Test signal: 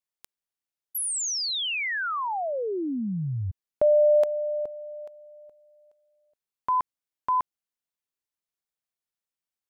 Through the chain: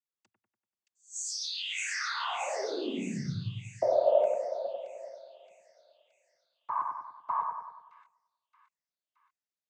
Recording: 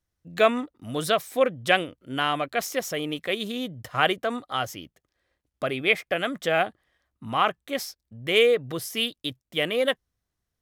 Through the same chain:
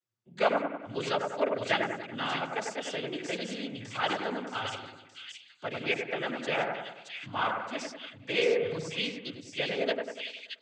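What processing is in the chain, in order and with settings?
cochlear-implant simulation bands 16
echo with a time of its own for lows and highs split 2,200 Hz, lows 96 ms, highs 622 ms, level −4 dB
level −7.5 dB

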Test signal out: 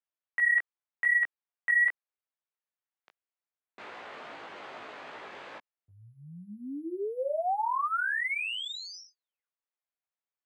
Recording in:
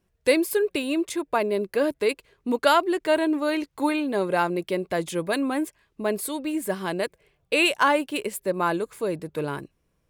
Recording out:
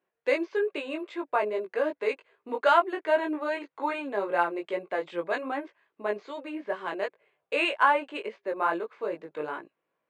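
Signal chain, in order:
bad sample-rate conversion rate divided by 4×, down filtered, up hold
band-pass filter 490–2,400 Hz
chorus effect 2.5 Hz, delay 17.5 ms, depth 2.4 ms
level +2 dB

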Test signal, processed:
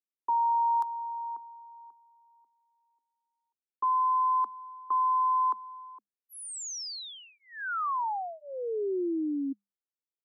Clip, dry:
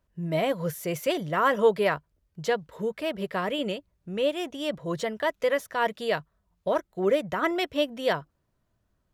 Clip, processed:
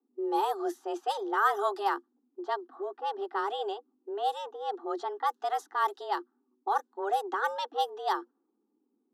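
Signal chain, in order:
frequency shifter +200 Hz
phaser with its sweep stopped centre 610 Hz, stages 6
low-pass that shuts in the quiet parts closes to 580 Hz, open at −24.5 dBFS

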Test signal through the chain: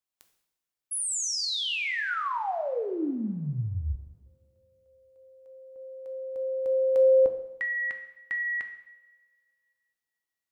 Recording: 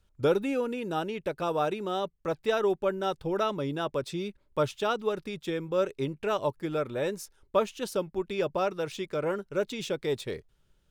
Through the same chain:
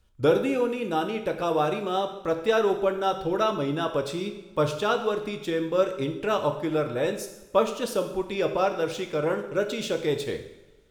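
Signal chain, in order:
coupled-rooms reverb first 0.79 s, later 2.4 s, from −21 dB, DRR 5 dB
level +3 dB

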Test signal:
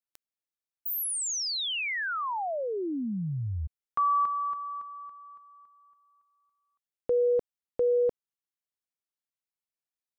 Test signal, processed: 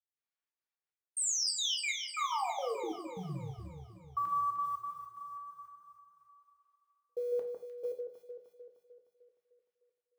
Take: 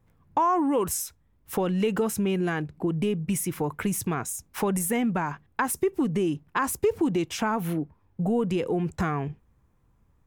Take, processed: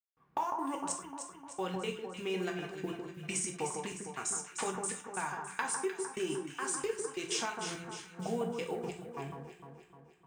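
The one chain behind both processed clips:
Chebyshev low-pass filter 9,200 Hz, order 10
low-pass that shuts in the quiet parts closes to 2,200 Hz, open at −27 dBFS
high-pass filter 530 Hz 6 dB per octave
high-shelf EQ 3,100 Hz +10 dB
downward compressor 3 to 1, threshold −37 dBFS
floating-point word with a short mantissa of 4 bits
gate pattern "..xxxx.xx.x." 180 BPM −60 dB
on a send: delay that swaps between a low-pass and a high-pass 152 ms, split 1,600 Hz, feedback 72%, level −4.5 dB
on the sum: reverb whose tail is shaped and stops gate 130 ms falling, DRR 2 dB

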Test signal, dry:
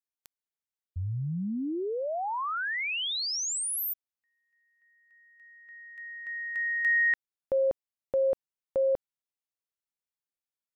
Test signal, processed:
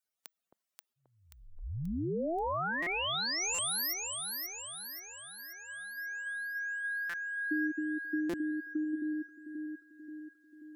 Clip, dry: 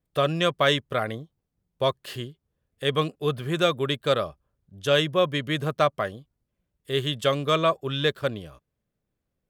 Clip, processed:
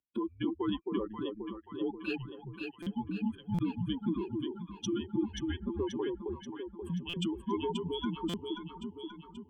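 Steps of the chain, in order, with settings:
expanding power law on the bin magnitudes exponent 2.8
high-pass filter 410 Hz 24 dB per octave
in parallel at −1 dB: brickwall limiter −23 dBFS
on the sum: downward compressor 3 to 1, threshold −37 dBFS
on a send: delay that swaps between a low-pass and a high-pass 266 ms, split 1,000 Hz, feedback 74%, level −2 dB
on the sum: frequency shifter −230 Hz
buffer that repeats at 0:02.82/0:03.54/0:07.09/0:08.29, samples 256, times 7

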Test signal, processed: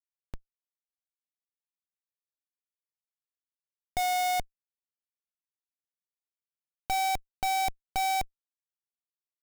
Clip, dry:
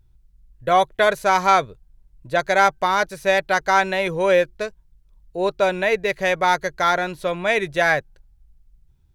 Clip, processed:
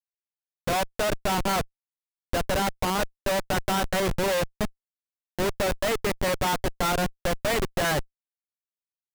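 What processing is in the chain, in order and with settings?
one-sided soft clipper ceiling −18 dBFS
comparator with hysteresis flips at −22 dBFS

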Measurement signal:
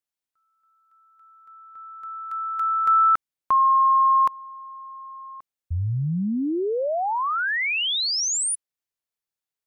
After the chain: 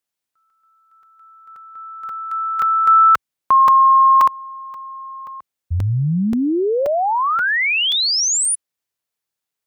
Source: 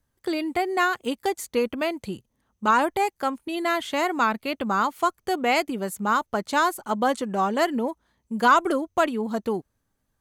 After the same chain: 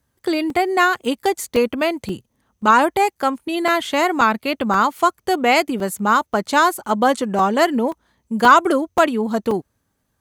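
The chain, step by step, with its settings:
high-pass filter 52 Hz
regular buffer underruns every 0.53 s, samples 128, zero, from 0:00.50
level +6.5 dB

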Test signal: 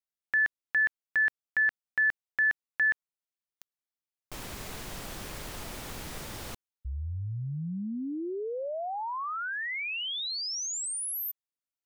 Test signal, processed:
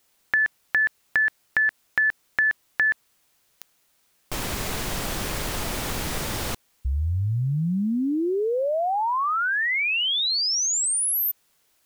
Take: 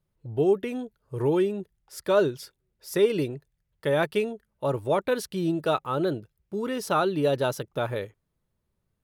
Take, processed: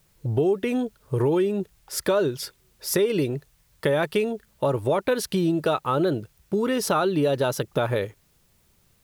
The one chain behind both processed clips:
in parallel at −0.5 dB: brickwall limiter −19 dBFS
on the sum: downward compressor 3 to 1, threshold −28 dBFS
bit-depth reduction 12 bits, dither triangular
level +6 dB

